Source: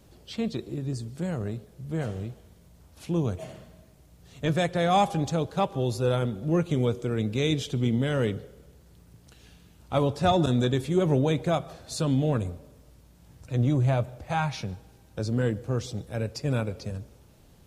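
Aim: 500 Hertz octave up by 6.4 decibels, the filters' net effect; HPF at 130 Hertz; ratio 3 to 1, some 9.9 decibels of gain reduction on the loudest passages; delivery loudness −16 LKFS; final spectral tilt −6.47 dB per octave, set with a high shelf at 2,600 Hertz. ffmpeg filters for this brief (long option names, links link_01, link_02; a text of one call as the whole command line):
ffmpeg -i in.wav -af "highpass=130,equalizer=frequency=500:width_type=o:gain=8,highshelf=frequency=2600:gain=-7,acompressor=threshold=-28dB:ratio=3,volume=16dB" out.wav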